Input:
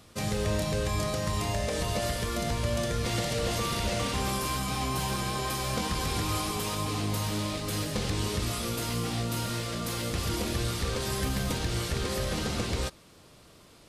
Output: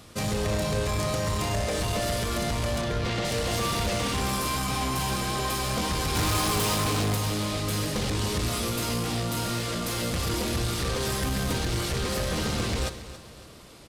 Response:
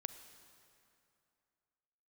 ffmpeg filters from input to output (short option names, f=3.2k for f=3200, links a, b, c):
-filter_complex "[0:a]asettb=1/sr,asplit=3[a][b][c];[a]atrim=end=2.814[d];[b]atrim=start=2.81:end=3.25,asetpts=PTS-STARTPTS,afade=t=in:d=0.004:c=qsin,afade=t=out:st=0.436:d=0.004:c=qsin,lowpass=4.3k[e];[c]atrim=start=3.246[f];[d][e]acrossfade=d=0.004:c1=hsin:c2=qsin[g];[g][f]acrossfade=d=0.004:c1=qsin:c2=hsin,asettb=1/sr,asplit=3[h][i][j];[h]atrim=end=6.154[k];[i]atrim=start=6.15:end=7.15,asetpts=PTS-STARTPTS,afade=t=in:d=0.004:c=qsin,afade=t=out:st=0.996:d=0.004:c=qsin,acontrast=89[l];[j]atrim=start=7.146[m];[k][l]acrossfade=d=0.004:c1=hsin:c2=qsin[n];[n][m]acrossfade=d=0.004:c1=qsin:c2=hsin,asoftclip=type=tanh:threshold=-28.5dB,aecho=1:1:278|556|834|1112:0.178|0.0782|0.0344|0.0151[o];[1:a]atrim=start_sample=2205,atrim=end_sample=6615[p];[o][p]afir=irnorm=-1:irlink=0,volume=8.5dB"